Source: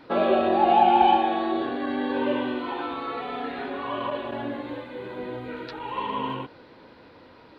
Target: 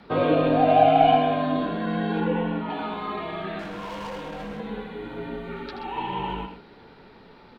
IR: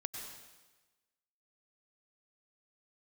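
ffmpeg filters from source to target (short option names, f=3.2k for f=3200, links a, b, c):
-filter_complex "[0:a]asettb=1/sr,asplit=3[a][b][c];[a]atrim=end=2.204[d];[b]atrim=start=2.2:end=2.7,asetpts=PTS-STARTPTS,afade=t=in:d=0.004:c=qsin,afade=t=out:st=0.496:d=0.004:c=qsin,acrossover=split=2700[e][f];[f]acompressor=threshold=-59dB:ratio=4:attack=1:release=60[g];[e][g]amix=inputs=2:normalize=0[h];[c]atrim=start=2.696[i];[d][h]acrossfade=d=0.004:c1=hsin:c2=qsin[j];[j][i]acrossfade=d=0.004:c1=qsin:c2=hsin,asettb=1/sr,asplit=3[k][l][m];[k]atrim=end=3.594[n];[l]atrim=start=3.59:end=4.6,asetpts=PTS-STARTPTS,afade=t=in:d=0.004:c=qsin,afade=t=out:st=1.006:d=0.004:c=qsin,asoftclip=type=hard:threshold=-33dB[o];[m]atrim=start=4.596[p];[n][o]acrossfade=d=0.004:c1=hsin:c2=qsin[q];[q][p]acrossfade=d=0.004:c1=qsin:c2=hsin,afreqshift=-78,aecho=1:1:78.72|128.3:0.355|0.282"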